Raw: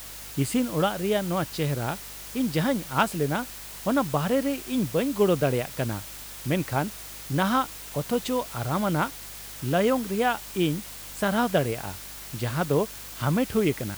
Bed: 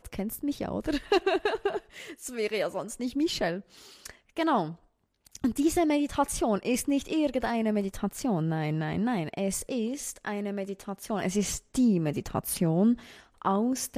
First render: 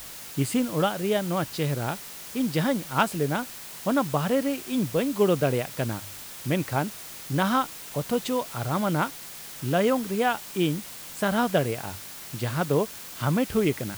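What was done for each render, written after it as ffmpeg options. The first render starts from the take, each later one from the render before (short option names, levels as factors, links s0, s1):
-af "bandreject=f=50:t=h:w=4,bandreject=f=100:t=h:w=4"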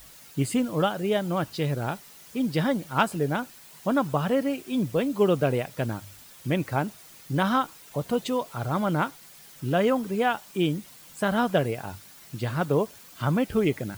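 -af "afftdn=nr=10:nf=-41"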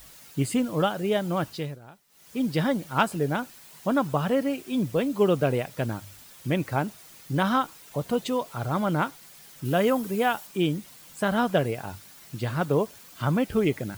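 -filter_complex "[0:a]asettb=1/sr,asplit=3[s0][s1][s2];[s0]atrim=end=9.654[s3];[s1]atrim=start=9.65:end=10.47,asetpts=PTS-STARTPTS,afade=t=in:d=0.004:c=qsin,afade=t=out:st=0.816:d=0.004:c=qsin,equalizer=f=15000:w=0.4:g=8.5[s4];[s2]atrim=start=10.466[s5];[s3][s4]acrossfade=d=0.004:c1=hsin:c2=qsin[s6];[s6][s5]acrossfade=d=0.004:c1=qsin:c2=hsin,asplit=3[s7][s8][s9];[s7]atrim=end=1.79,asetpts=PTS-STARTPTS,afade=t=out:st=1.48:d=0.31:silence=0.11885[s10];[s8]atrim=start=1.79:end=2.08,asetpts=PTS-STARTPTS,volume=0.119[s11];[s9]atrim=start=2.08,asetpts=PTS-STARTPTS,afade=t=in:d=0.31:silence=0.11885[s12];[s10][s11][s12]concat=n=3:v=0:a=1"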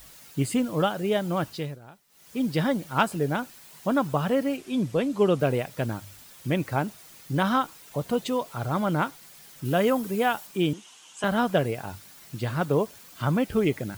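-filter_complex "[0:a]asettb=1/sr,asplit=3[s0][s1][s2];[s0]atrim=end=4.574[s3];[s1]atrim=start=4.57:end=5.4,asetpts=PTS-STARTPTS,afade=t=in:d=0.004:c=qsin,afade=t=out:st=0.826:d=0.004:c=qsin,lowpass=10000[s4];[s2]atrim=start=5.396[s5];[s3][s4]acrossfade=d=0.004:c1=hsin:c2=qsin[s6];[s6][s5]acrossfade=d=0.004:c1=qsin:c2=hsin,asettb=1/sr,asplit=3[s7][s8][s9];[s7]atrim=end=10.734[s10];[s8]atrim=start=10.73:end=11.24,asetpts=PTS-STARTPTS,afade=t=in:d=0.004:c=qsin,afade=t=out:st=0.506:d=0.004:c=qsin,highpass=420,equalizer=f=560:t=q:w=4:g=-9,equalizer=f=920:t=q:w=4:g=3,equalizer=f=2000:t=q:w=4:g=-5,equalizer=f=3000:t=q:w=4:g=10,equalizer=f=4400:t=q:w=4:g=-5,equalizer=f=6400:t=q:w=4:g=5,lowpass=f=8900:w=0.5412,lowpass=f=8900:w=1.3066[s11];[s9]atrim=start=11.236[s12];[s10][s11]acrossfade=d=0.004:c1=hsin:c2=qsin[s13];[s13][s12]acrossfade=d=0.004:c1=qsin:c2=hsin"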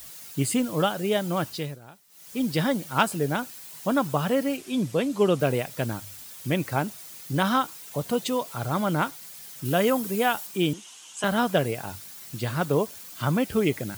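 -af "highpass=65,highshelf=f=3800:g=7.5"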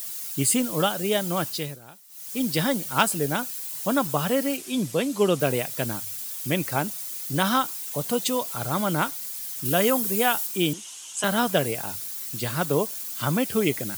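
-af "highpass=110,highshelf=f=4500:g=10"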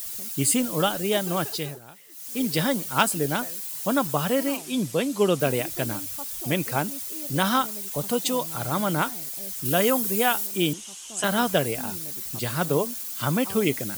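-filter_complex "[1:a]volume=0.168[s0];[0:a][s0]amix=inputs=2:normalize=0"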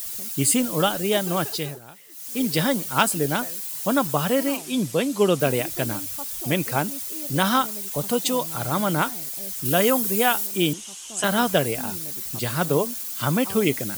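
-af "volume=1.26,alimiter=limit=0.708:level=0:latency=1"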